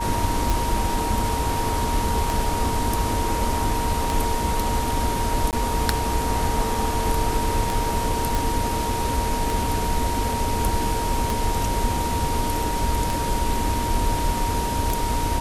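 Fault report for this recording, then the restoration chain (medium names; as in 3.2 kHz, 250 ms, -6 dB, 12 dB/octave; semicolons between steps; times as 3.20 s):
tick 33 1/3 rpm
whine 940 Hz -26 dBFS
5.51–5.53 s: dropout 18 ms
8.35 s: pop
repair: de-click; band-stop 940 Hz, Q 30; interpolate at 5.51 s, 18 ms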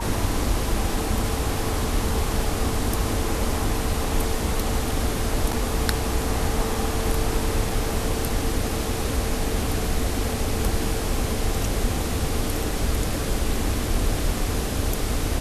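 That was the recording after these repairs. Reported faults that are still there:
nothing left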